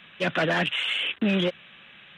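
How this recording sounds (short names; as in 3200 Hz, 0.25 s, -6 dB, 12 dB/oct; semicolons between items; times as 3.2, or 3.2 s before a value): noise floor -51 dBFS; spectral tilt -2.5 dB/oct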